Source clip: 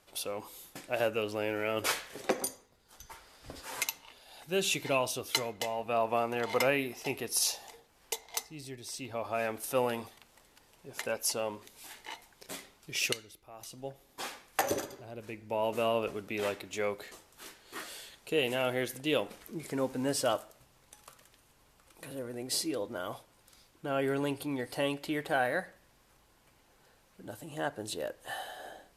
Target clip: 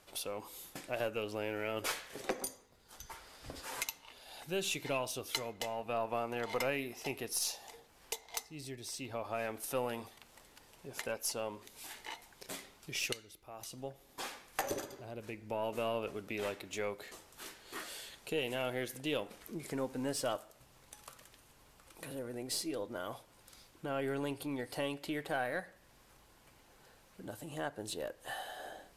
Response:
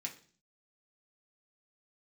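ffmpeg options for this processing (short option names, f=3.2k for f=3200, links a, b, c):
-af "acompressor=threshold=-49dB:ratio=1.5,aeval=exprs='0.1*(cos(1*acos(clip(val(0)/0.1,-1,1)))-cos(1*PI/2))+0.002*(cos(8*acos(clip(val(0)/0.1,-1,1)))-cos(8*PI/2))':c=same,volume=2dB"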